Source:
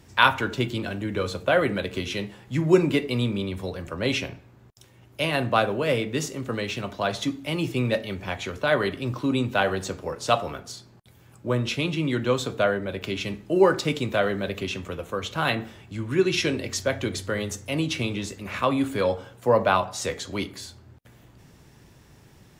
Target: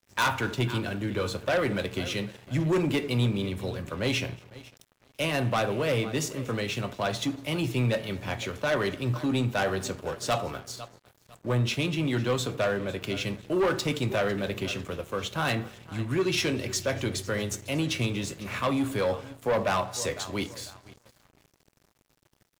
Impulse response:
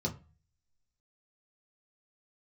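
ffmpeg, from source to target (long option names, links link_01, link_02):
-filter_complex "[0:a]asplit=2[link_01][link_02];[link_02]aecho=0:1:501|1002|1503:0.106|0.0392|0.0145[link_03];[link_01][link_03]amix=inputs=2:normalize=0,asoftclip=type=tanh:threshold=-20dB,highshelf=frequency=8300:gain=4.5,asplit=2[link_04][link_05];[link_05]aecho=0:1:234:0.0668[link_06];[link_04][link_06]amix=inputs=2:normalize=0,adynamicequalizer=threshold=0.00501:dfrequency=120:dqfactor=6.1:tfrequency=120:tqfactor=6.1:attack=5:release=100:ratio=0.375:range=2.5:mode=boostabove:tftype=bell,aeval=exprs='sgn(val(0))*max(abs(val(0))-0.00422,0)':channel_layout=same"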